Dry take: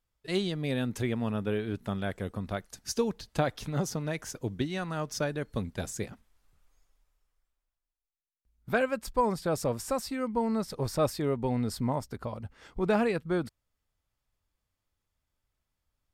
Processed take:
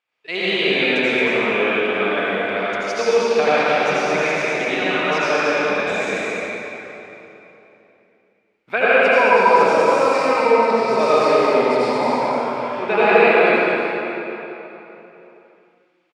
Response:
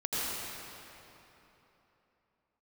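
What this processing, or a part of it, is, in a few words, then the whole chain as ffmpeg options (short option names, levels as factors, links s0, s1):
station announcement: -filter_complex "[0:a]highpass=470,lowpass=3700,equalizer=f=2400:t=o:w=0.53:g=11,aecho=1:1:69.97|224.5:0.316|0.631[s0];[1:a]atrim=start_sample=2205[s1];[s0][s1]afir=irnorm=-1:irlink=0,volume=2.37"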